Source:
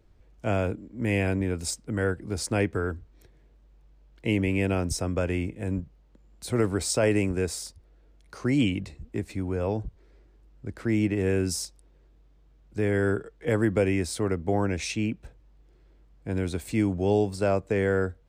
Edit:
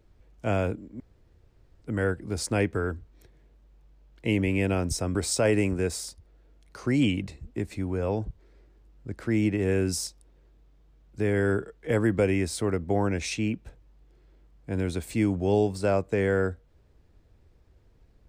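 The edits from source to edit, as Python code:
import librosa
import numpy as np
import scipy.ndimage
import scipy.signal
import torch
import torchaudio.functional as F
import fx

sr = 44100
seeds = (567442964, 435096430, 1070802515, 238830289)

y = fx.edit(x, sr, fx.room_tone_fill(start_s=1.0, length_s=0.82),
    fx.cut(start_s=5.15, length_s=1.58), tone=tone)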